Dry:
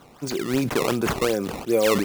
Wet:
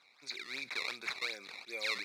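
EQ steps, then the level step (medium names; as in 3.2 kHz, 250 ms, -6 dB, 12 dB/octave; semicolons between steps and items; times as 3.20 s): two resonant band-passes 3 kHz, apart 0.77 oct; 0.0 dB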